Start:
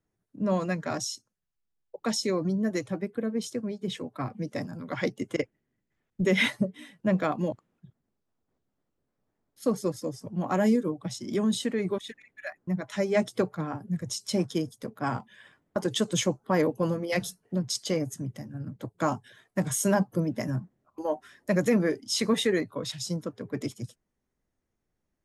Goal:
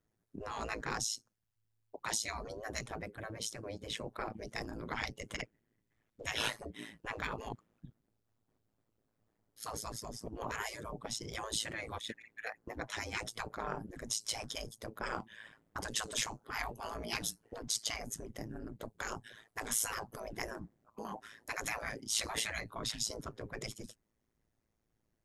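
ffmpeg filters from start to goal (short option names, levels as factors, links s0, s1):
-af "tremolo=f=110:d=0.857,afftfilt=real='re*lt(hypot(re,im),0.0562)':imag='im*lt(hypot(re,im),0.0562)':win_size=1024:overlap=0.75,volume=1.5"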